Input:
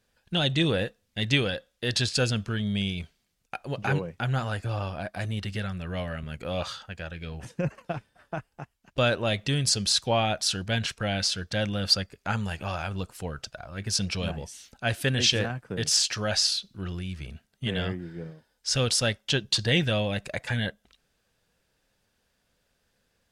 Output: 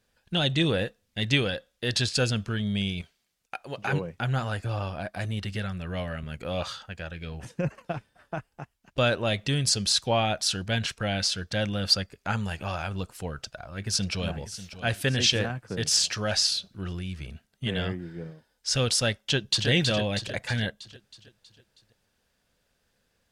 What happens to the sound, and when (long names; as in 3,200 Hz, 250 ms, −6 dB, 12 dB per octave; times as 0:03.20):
0:03.01–0:03.93: low-shelf EQ 270 Hz −10.5 dB
0:13.34–0:14.33: delay throw 590 ms, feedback 50%, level −13.5 dB
0:19.23–0:19.68: delay throw 320 ms, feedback 55%, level −5 dB